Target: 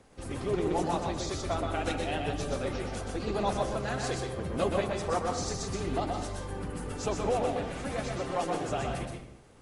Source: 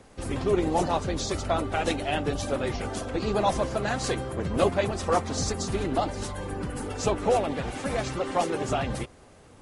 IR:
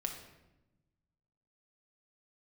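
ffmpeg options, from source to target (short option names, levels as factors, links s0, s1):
-filter_complex "[0:a]asplit=2[s0][s1];[1:a]atrim=start_sample=2205,afade=t=out:st=0.31:d=0.01,atrim=end_sample=14112,adelay=124[s2];[s1][s2]afir=irnorm=-1:irlink=0,volume=0.708[s3];[s0][s3]amix=inputs=2:normalize=0,volume=0.473"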